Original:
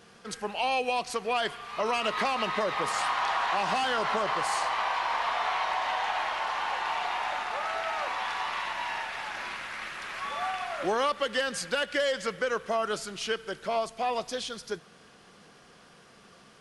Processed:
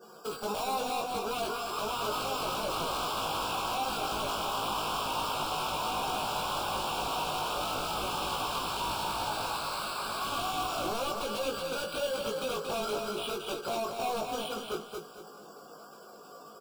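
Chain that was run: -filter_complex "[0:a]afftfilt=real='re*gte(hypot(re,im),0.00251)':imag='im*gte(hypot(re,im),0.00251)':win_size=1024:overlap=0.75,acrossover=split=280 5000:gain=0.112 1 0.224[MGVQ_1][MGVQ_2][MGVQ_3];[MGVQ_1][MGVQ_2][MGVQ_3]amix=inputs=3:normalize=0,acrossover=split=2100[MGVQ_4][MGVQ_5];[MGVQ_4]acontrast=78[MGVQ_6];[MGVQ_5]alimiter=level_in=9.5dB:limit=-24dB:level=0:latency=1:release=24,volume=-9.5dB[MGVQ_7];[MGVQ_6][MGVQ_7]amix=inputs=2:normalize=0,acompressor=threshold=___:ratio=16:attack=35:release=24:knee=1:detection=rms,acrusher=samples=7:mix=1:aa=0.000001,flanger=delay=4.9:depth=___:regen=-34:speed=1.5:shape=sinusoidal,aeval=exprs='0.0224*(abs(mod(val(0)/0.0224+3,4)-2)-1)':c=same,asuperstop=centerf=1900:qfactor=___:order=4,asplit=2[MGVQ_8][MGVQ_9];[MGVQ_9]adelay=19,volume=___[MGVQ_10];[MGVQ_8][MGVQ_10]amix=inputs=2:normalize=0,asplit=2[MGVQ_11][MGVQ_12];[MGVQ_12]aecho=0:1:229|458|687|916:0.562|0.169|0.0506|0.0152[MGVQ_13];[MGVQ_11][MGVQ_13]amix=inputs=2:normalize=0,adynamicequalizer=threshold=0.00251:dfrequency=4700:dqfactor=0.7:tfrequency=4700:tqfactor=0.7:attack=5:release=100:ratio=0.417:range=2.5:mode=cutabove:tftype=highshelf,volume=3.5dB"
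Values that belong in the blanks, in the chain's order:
-30dB, 2.2, 1.7, -3dB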